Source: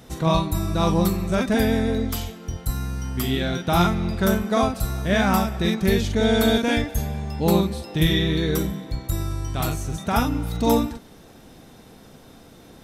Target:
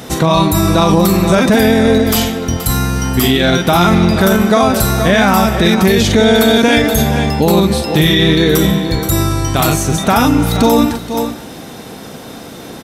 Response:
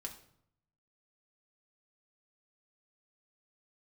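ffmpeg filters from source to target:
-filter_complex "[0:a]highpass=frequency=170:poles=1,asplit=2[link_01][link_02];[link_02]aecho=0:1:476:0.168[link_03];[link_01][link_03]amix=inputs=2:normalize=0,alimiter=level_in=19dB:limit=-1dB:release=50:level=0:latency=1,volume=-1dB"

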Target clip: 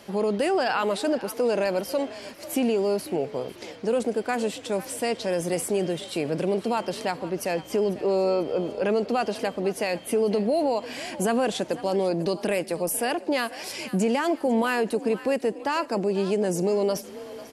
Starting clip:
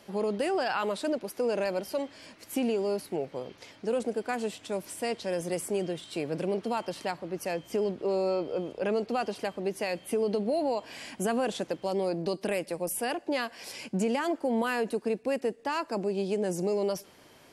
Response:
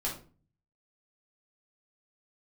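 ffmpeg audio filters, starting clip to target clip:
-filter_complex "[0:a]asplit=4[link_01][link_02][link_03][link_04];[link_02]adelay=495,afreqshift=43,volume=-18dB[link_05];[link_03]adelay=990,afreqshift=86,volume=-26.2dB[link_06];[link_04]adelay=1485,afreqshift=129,volume=-34.4dB[link_07];[link_01][link_05][link_06][link_07]amix=inputs=4:normalize=0,asplit=2[link_08][link_09];[link_09]alimiter=level_in=2dB:limit=-24dB:level=0:latency=1,volume=-2dB,volume=-3dB[link_10];[link_08][link_10]amix=inputs=2:normalize=0,volume=2dB"

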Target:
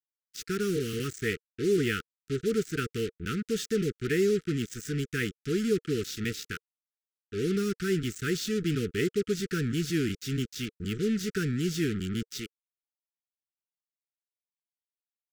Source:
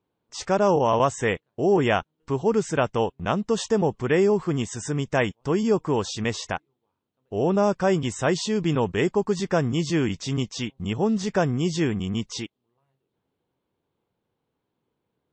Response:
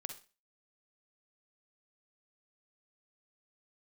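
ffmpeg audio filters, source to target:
-af "acrusher=bits=4:mix=0:aa=0.5,asuperstop=centerf=770:order=20:qfactor=0.93,volume=-5dB"

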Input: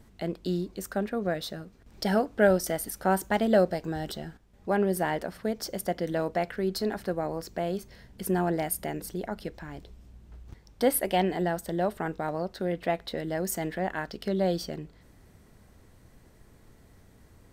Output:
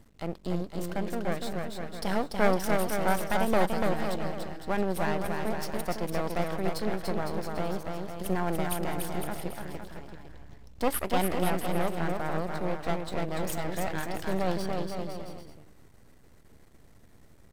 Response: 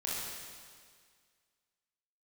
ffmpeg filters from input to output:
-af "aeval=exprs='max(val(0),0)':channel_layout=same,aecho=1:1:290|507.5|670.6|793|884.7:0.631|0.398|0.251|0.158|0.1"

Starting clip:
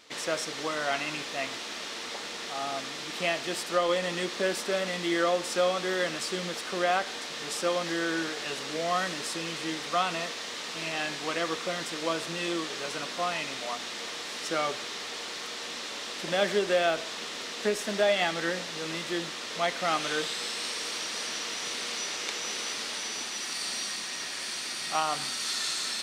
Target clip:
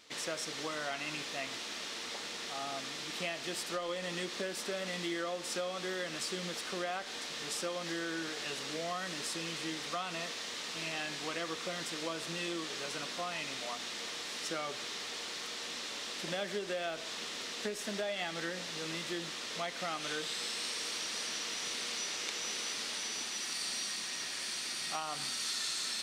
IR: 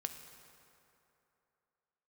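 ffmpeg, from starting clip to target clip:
-af "acompressor=threshold=-29dB:ratio=4,equalizer=frequency=750:width=0.39:gain=-3.5,volume=-2.5dB"

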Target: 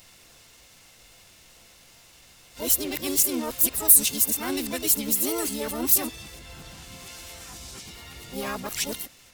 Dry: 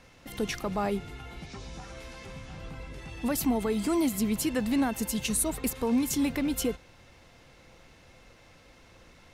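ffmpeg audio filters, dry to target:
ffmpeg -i in.wav -filter_complex "[0:a]areverse,asplit=3[link_01][link_02][link_03];[link_02]asetrate=58866,aresample=44100,atempo=0.749154,volume=-2dB[link_04];[link_03]asetrate=88200,aresample=44100,atempo=0.5,volume=-11dB[link_05];[link_01][link_04][link_05]amix=inputs=3:normalize=0,crystalizer=i=5.5:c=0,volume=-6.5dB" out.wav

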